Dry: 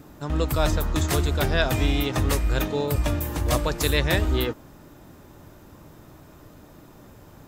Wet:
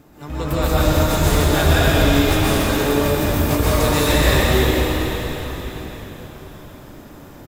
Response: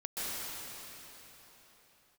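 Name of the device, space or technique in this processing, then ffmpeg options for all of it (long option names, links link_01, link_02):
shimmer-style reverb: -filter_complex "[0:a]asettb=1/sr,asplit=3[link_01][link_02][link_03];[link_01]atrim=end=1.914[link_04];[link_02]atrim=start=1.91:end=3.06,asetpts=PTS-STARTPTS,afade=type=in:duration=0.004:curve=qsin,afade=type=out:start_time=1.146:duration=0.004:curve=qsin,highpass=150[link_05];[link_03]atrim=start=3.056[link_06];[link_04][link_05]acrossfade=duration=0.004:curve1=hsin:curve2=qsin[link_07];[link_07][link_06]acrossfade=duration=0.004:curve1=qsin:curve2=hsin,asplit=2[link_08][link_09];[link_09]asetrate=88200,aresample=44100,atempo=0.5,volume=-10dB[link_10];[link_08][link_10]amix=inputs=2:normalize=0[link_11];[1:a]atrim=start_sample=2205[link_12];[link_11][link_12]afir=irnorm=-1:irlink=0,asplit=6[link_13][link_14][link_15][link_16][link_17][link_18];[link_14]adelay=490,afreqshift=-56,volume=-14.5dB[link_19];[link_15]adelay=980,afreqshift=-112,volume=-20.2dB[link_20];[link_16]adelay=1470,afreqshift=-168,volume=-25.9dB[link_21];[link_17]adelay=1960,afreqshift=-224,volume=-31.5dB[link_22];[link_18]adelay=2450,afreqshift=-280,volume=-37.2dB[link_23];[link_13][link_19][link_20][link_21][link_22][link_23]amix=inputs=6:normalize=0,volume=2dB"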